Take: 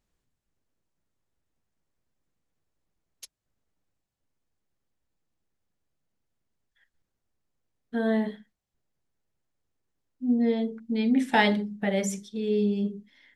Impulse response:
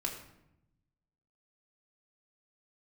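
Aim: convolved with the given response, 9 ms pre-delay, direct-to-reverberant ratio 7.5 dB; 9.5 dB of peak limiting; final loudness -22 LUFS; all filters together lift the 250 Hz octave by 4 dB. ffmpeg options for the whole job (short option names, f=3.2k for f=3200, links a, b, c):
-filter_complex "[0:a]equalizer=f=250:t=o:g=4.5,alimiter=limit=-17dB:level=0:latency=1,asplit=2[a][b];[1:a]atrim=start_sample=2205,adelay=9[c];[b][c]afir=irnorm=-1:irlink=0,volume=-9.5dB[d];[a][d]amix=inputs=2:normalize=0,volume=2.5dB"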